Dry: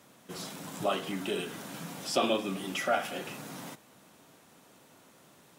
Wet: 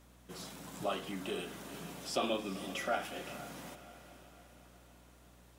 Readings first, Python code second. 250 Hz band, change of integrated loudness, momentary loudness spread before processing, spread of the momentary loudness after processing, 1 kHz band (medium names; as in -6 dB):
-5.5 dB, -6.0 dB, 14 LU, 21 LU, -5.5 dB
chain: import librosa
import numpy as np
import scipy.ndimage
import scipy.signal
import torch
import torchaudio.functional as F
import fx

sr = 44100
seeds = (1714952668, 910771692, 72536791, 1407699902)

y = fx.echo_diffused(x, sr, ms=458, feedback_pct=51, wet_db=-13.5)
y = fx.add_hum(y, sr, base_hz=60, snr_db=21)
y = F.gain(torch.from_numpy(y), -6.0).numpy()